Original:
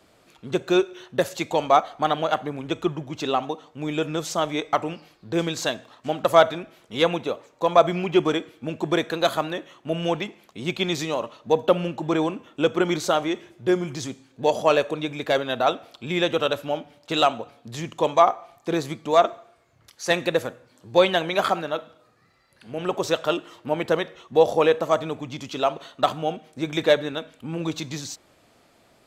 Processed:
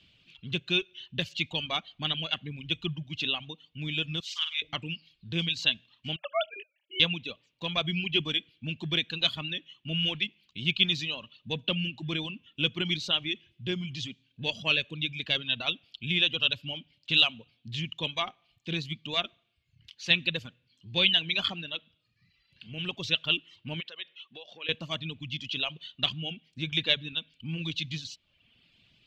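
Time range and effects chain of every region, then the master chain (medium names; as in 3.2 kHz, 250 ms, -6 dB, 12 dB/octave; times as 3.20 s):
4.20–4.62 s: inverse Chebyshev high-pass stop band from 550 Hz + transient shaper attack -4 dB, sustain -9 dB + flutter echo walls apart 8.7 m, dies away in 0.71 s
6.16–7.00 s: formants replaced by sine waves + small resonant body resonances 290/770/1700 Hz, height 14 dB, ringing for 25 ms
23.80–24.69 s: compression 3:1, threshold -30 dBFS + band-pass 440–4600 Hz
whole clip: band-stop 1.3 kHz, Q 14; reverb removal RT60 0.82 s; FFT filter 160 Hz 0 dB, 420 Hz -17 dB, 760 Hz -21 dB, 1.9 kHz -8 dB, 2.9 kHz +10 dB, 9.5 kHz -23 dB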